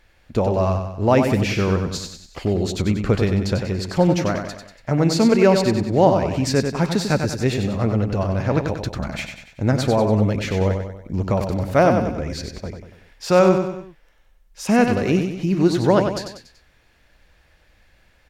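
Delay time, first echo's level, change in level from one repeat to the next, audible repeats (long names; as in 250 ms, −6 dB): 95 ms, −6.5 dB, −6.5 dB, 4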